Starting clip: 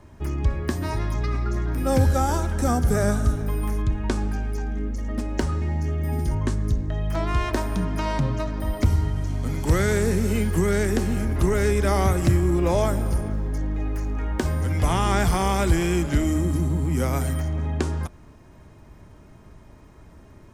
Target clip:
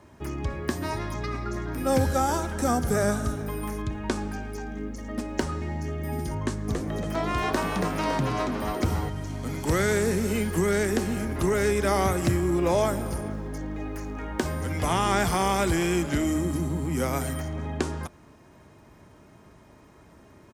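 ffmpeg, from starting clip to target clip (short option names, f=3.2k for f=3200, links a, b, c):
-filter_complex "[0:a]highpass=f=190:p=1,asplit=3[a][b][c];[a]afade=t=out:st=6.67:d=0.02[d];[b]asplit=7[e][f][g][h][i][j][k];[f]adelay=279,afreqshift=110,volume=-4.5dB[l];[g]adelay=558,afreqshift=220,volume=-11.4dB[m];[h]adelay=837,afreqshift=330,volume=-18.4dB[n];[i]adelay=1116,afreqshift=440,volume=-25.3dB[o];[j]adelay=1395,afreqshift=550,volume=-32.2dB[p];[k]adelay=1674,afreqshift=660,volume=-39.2dB[q];[e][l][m][n][o][p][q]amix=inputs=7:normalize=0,afade=t=in:st=6.67:d=0.02,afade=t=out:st=9.08:d=0.02[r];[c]afade=t=in:st=9.08:d=0.02[s];[d][r][s]amix=inputs=3:normalize=0"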